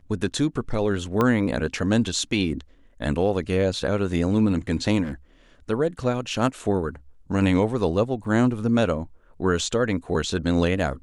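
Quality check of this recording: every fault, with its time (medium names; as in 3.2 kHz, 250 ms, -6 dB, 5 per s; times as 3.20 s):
1.21 s: pop -10 dBFS
5.03–5.13 s: clipped -27 dBFS
8.24–8.25 s: dropout 5.1 ms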